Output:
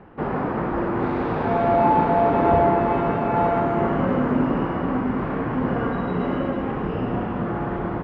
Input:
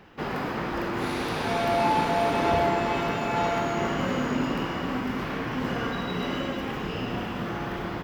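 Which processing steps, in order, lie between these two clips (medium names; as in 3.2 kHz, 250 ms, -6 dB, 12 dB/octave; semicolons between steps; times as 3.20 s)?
low-pass 1.2 kHz 12 dB/octave; trim +6.5 dB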